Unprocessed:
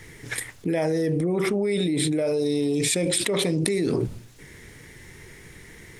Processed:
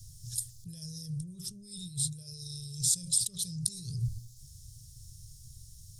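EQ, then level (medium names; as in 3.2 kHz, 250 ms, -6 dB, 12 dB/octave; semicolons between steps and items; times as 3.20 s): elliptic band-stop 120–5000 Hz, stop band 40 dB; 0.0 dB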